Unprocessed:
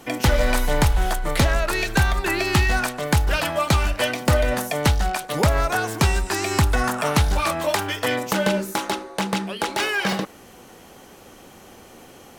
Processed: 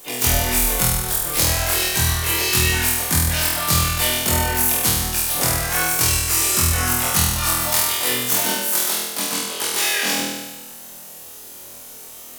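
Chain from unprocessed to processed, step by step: pre-emphasis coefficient 0.8; spectral gate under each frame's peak -25 dB strong; high shelf 5400 Hz +6 dB; harmoniser +3 st -3 dB, +7 st -4 dB; flutter echo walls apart 4.2 m, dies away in 1.2 s; gain +2 dB

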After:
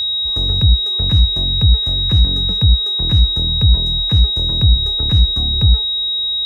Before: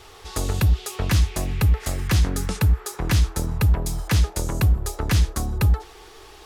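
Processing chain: HPF 59 Hz; tilt -4 dB/oct; whine 3800 Hz -9 dBFS; gain -7 dB

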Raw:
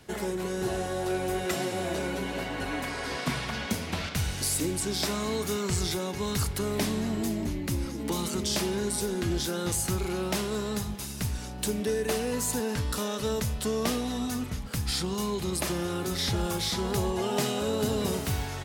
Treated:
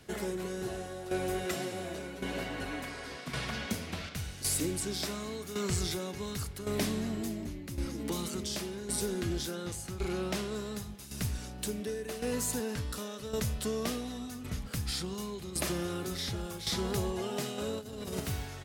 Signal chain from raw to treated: bell 900 Hz -4.5 dB 0.36 oct; tremolo saw down 0.9 Hz, depth 70%; 9.55–10.56 high shelf 10000 Hz -9 dB; 17.58–18.2 negative-ratio compressor -34 dBFS, ratio -0.5; gain -2 dB

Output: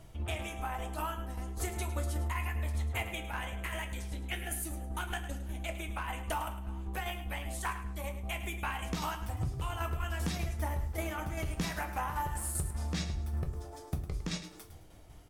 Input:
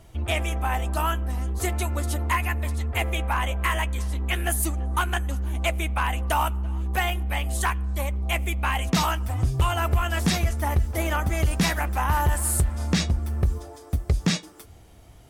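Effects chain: 3.08–5.73 bell 1100 Hz -10 dB 0.32 oct; compressor, threshold -27 dBFS, peak gain reduction 10 dB; tremolo saw down 5.1 Hz, depth 55%; feedback echo 0.106 s, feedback 27%, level -12 dB; reverb RT60 0.35 s, pre-delay 6 ms, DRR 5.5 dB; gain -3.5 dB

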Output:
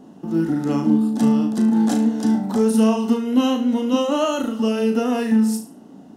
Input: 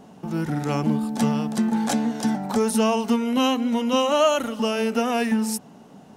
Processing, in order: bell 290 Hz +13 dB 0.77 oct; notch 2300 Hz, Q 6.7; on a send: flutter echo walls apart 6.2 m, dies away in 0.36 s; on the sum: gain -4 dB

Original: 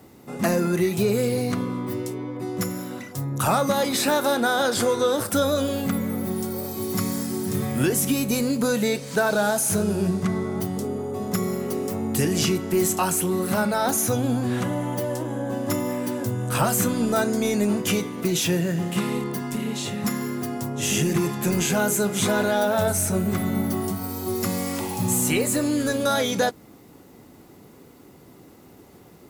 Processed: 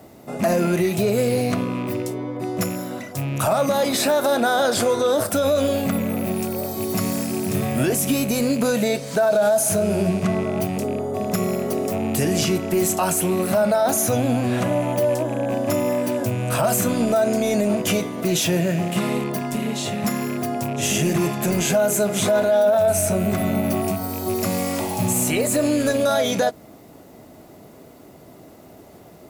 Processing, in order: rattling part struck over -29 dBFS, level -30 dBFS; bell 640 Hz +14.5 dB 0.24 oct; limiter -13.5 dBFS, peak gain reduction 11.5 dB; gain +2.5 dB

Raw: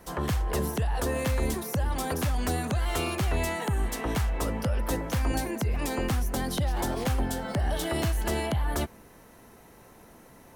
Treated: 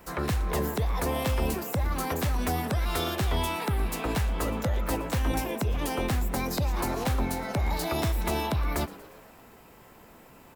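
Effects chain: formant shift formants +4 st; frequency-shifting echo 0.117 s, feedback 62%, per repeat +120 Hz, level -19 dB

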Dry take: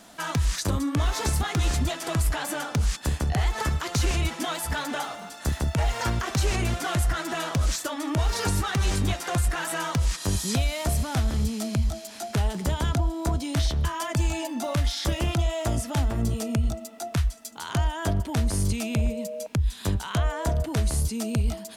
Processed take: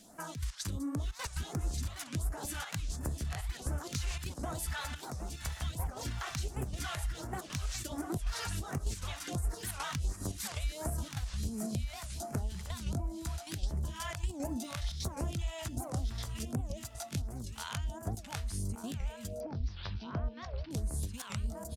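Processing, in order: step gate "xxxx.x.xx" 176 bpm -12 dB; compressor, threshold -28 dBFS, peak gain reduction 8.5 dB; feedback echo 1.179 s, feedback 29%, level -6 dB; phaser stages 2, 1.4 Hz, lowest notch 250–3400 Hz; 19.4–20.71 steep low-pass 5300 Hz 72 dB/oct; record warp 78 rpm, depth 250 cents; gain -5.5 dB

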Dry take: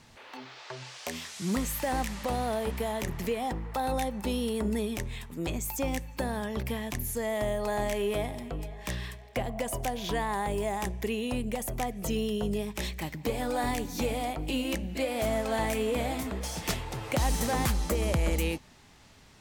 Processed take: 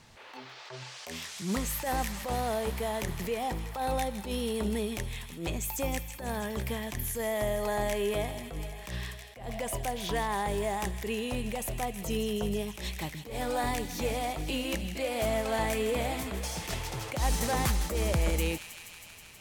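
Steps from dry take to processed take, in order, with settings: bell 260 Hz -4 dB 0.5 oct; thin delay 0.16 s, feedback 80%, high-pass 1900 Hz, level -10 dB; attack slew limiter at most 110 dB/s

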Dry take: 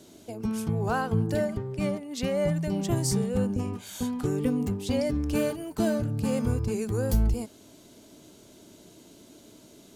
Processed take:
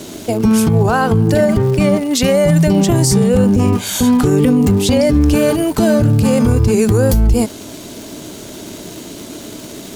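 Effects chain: 2.15–2.64 high shelf 5600 Hz +8 dB; crackle 450/s -47 dBFS; maximiser +24.5 dB; gain -3.5 dB

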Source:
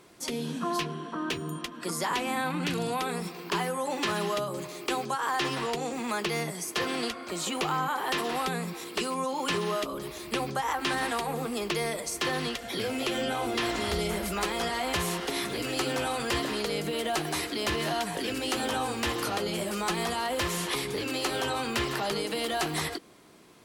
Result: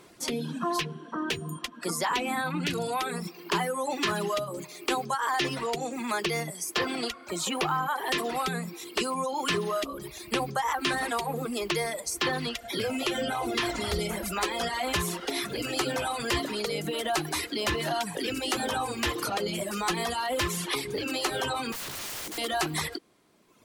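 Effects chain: reverb removal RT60 1.5 s; 21.72–22.38 wrapped overs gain 34.5 dB; gain +2.5 dB

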